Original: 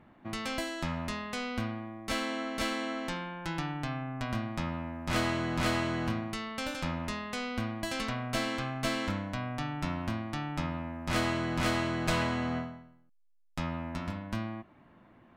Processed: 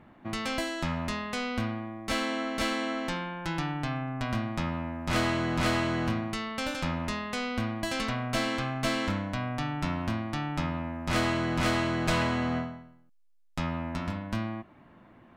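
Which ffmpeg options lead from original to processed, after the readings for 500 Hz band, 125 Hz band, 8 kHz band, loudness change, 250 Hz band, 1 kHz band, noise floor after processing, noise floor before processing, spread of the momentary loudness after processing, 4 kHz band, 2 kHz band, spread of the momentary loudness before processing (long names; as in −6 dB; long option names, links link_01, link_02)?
+3.0 dB, +3.0 dB, +2.0 dB, +3.0 dB, +3.0 dB, +3.0 dB, −57 dBFS, −60 dBFS, 7 LU, +2.5 dB, +3.0 dB, 8 LU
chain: -filter_complex "[0:a]asplit=2[link_01][link_02];[link_02]volume=28.5dB,asoftclip=hard,volume=-28.5dB,volume=-6dB[link_03];[link_01][link_03]amix=inputs=2:normalize=0,highshelf=frequency=11000:gain=-4"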